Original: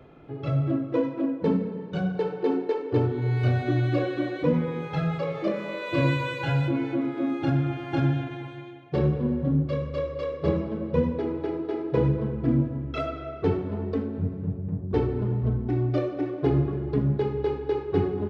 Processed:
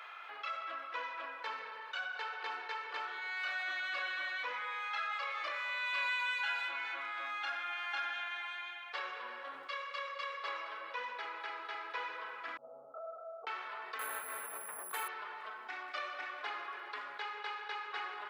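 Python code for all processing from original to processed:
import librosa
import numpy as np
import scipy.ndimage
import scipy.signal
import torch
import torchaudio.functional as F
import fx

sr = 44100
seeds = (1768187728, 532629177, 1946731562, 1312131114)

y = fx.chain(x, sr, fx.comb(ms=1.5, depth=0.97),
    fx.over_compress(threshold_db=-24.0, ratio=-0.5),
    fx.gaussian_blur(sigma=14.0), at=(12.57, 13.47))
y = fx.chain(y, sr, fx.resample_bad(factor=4, down='filtered', up='hold'),
    fx.env_flatten(amount_pct=100), at=(13.99, 15.08))
y = scipy.signal.sosfilt(scipy.signal.butter(4, 1200.0, 'highpass', fs=sr, output='sos'), y)
y = fx.high_shelf(y, sr, hz=3900.0, db=-7.5)
y = fx.env_flatten(y, sr, amount_pct=50)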